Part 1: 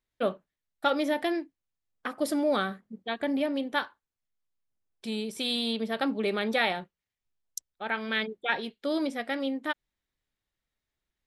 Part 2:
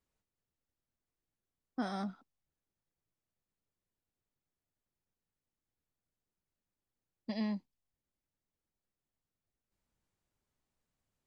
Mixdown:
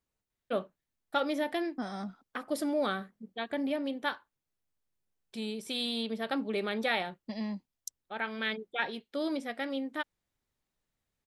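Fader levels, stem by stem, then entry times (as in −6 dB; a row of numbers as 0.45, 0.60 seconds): −4.0, −0.5 decibels; 0.30, 0.00 seconds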